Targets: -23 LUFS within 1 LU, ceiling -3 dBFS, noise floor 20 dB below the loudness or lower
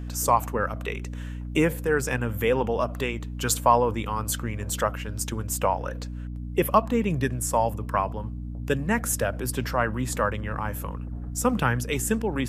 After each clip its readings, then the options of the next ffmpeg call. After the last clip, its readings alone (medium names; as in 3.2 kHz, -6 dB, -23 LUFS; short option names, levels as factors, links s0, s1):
hum 60 Hz; highest harmonic 300 Hz; hum level -31 dBFS; loudness -26.5 LUFS; peak level -5.5 dBFS; loudness target -23.0 LUFS
-> -af "bandreject=f=60:t=h:w=6,bandreject=f=120:t=h:w=6,bandreject=f=180:t=h:w=6,bandreject=f=240:t=h:w=6,bandreject=f=300:t=h:w=6"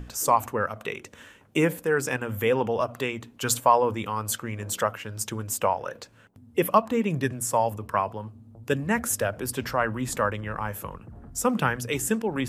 hum not found; loudness -26.5 LUFS; peak level -5.5 dBFS; loudness target -23.0 LUFS
-> -af "volume=1.5,alimiter=limit=0.708:level=0:latency=1"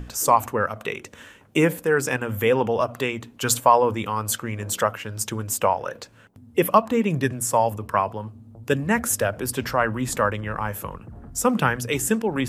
loudness -23.0 LUFS; peak level -3.0 dBFS; noise floor -50 dBFS